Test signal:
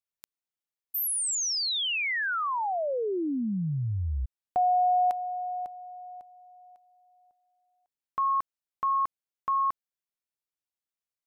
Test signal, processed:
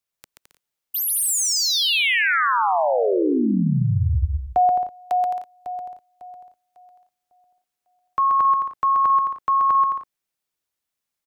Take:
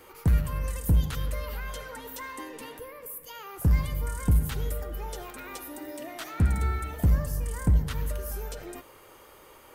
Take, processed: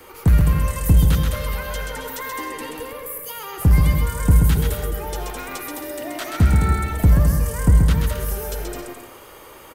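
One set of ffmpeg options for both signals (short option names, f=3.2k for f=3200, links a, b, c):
-filter_complex "[0:a]acrossover=split=420|600|2300[a][b][c][d];[d]volume=29.5dB,asoftclip=hard,volume=-29.5dB[e];[a][b][c][e]amix=inputs=4:normalize=0,aecho=1:1:130|214.5|269.4|305.1|328.3:0.631|0.398|0.251|0.158|0.1,volume=7.5dB"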